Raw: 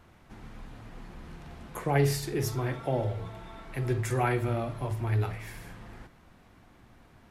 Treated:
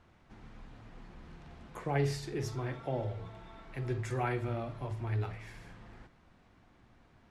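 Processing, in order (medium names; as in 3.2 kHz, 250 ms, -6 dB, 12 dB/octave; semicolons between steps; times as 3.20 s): low-pass 6.8 kHz 12 dB/octave; trim -6 dB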